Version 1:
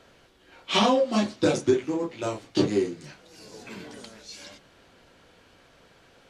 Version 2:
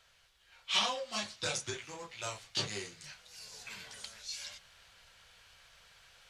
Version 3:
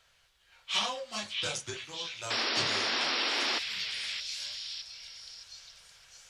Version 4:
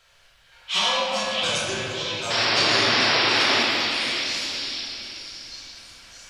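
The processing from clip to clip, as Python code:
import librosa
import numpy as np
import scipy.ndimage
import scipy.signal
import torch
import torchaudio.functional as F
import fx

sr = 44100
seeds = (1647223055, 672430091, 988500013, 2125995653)

y1 = fx.tone_stack(x, sr, knobs='10-0-10')
y1 = fx.rider(y1, sr, range_db=3, speed_s=2.0)
y2 = fx.spec_paint(y1, sr, seeds[0], shape='noise', start_s=2.3, length_s=1.29, low_hz=220.0, high_hz=5700.0, level_db=-31.0)
y2 = fx.echo_stepped(y2, sr, ms=616, hz=2700.0, octaves=0.7, feedback_pct=70, wet_db=-3.5)
y3 = fx.room_shoebox(y2, sr, seeds[1], volume_m3=170.0, walls='hard', distance_m=0.89)
y3 = F.gain(torch.from_numpy(y3), 4.5).numpy()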